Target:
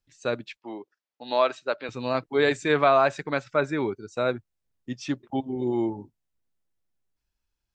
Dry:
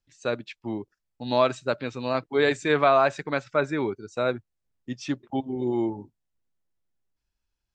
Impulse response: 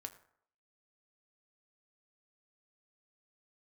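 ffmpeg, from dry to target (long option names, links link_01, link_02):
-filter_complex "[0:a]asettb=1/sr,asplit=3[link_01][link_02][link_03];[link_01]atrim=end=0.574[link_04];[link_02]atrim=start=0.57:end=1.89,asetpts=PTS-STARTPTS,afade=type=in:duration=0.004:curve=qsin,afade=type=out:start_time=1.316:duration=0.004:curve=qsin,highpass=420,lowpass=5000[link_05];[link_03]atrim=start=1.886[link_06];[link_04][link_05]acrossfade=duration=0.004:curve1=hsin:curve2=qsin[link_07];[link_07][link_06]acrossfade=duration=0.004:curve1=qsin:curve2=hsin"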